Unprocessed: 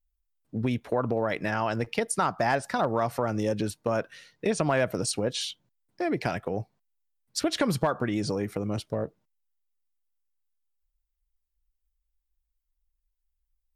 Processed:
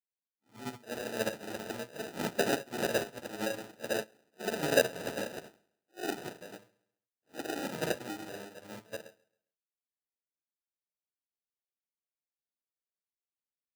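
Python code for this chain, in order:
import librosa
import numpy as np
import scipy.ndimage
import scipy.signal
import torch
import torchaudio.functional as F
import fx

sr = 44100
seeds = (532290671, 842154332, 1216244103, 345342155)

y = fx.phase_scramble(x, sr, seeds[0], window_ms=200)
y = fx.high_shelf(y, sr, hz=3100.0, db=5.5, at=(3.28, 5.4))
y = fx.sample_hold(y, sr, seeds[1], rate_hz=1100.0, jitter_pct=0)
y = scipy.signal.sosfilt(scipy.signal.butter(2, 140.0, 'highpass', fs=sr, output='sos'), y)
y = fx.low_shelf(y, sr, hz=220.0, db=-7.0)
y = fx.echo_feedback(y, sr, ms=135, feedback_pct=32, wet_db=-17.5)
y = fx.upward_expand(y, sr, threshold_db=-38.0, expansion=2.5)
y = y * 10.0 ** (3.5 / 20.0)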